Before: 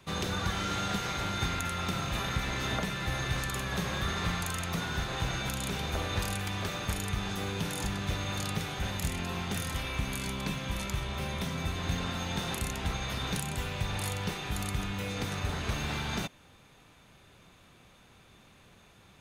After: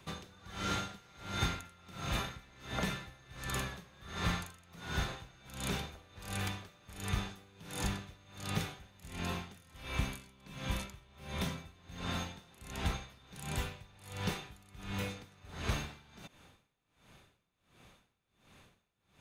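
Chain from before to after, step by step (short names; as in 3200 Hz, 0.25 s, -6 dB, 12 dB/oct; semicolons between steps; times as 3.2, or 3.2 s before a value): dB-linear tremolo 1.4 Hz, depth 26 dB; gain -1 dB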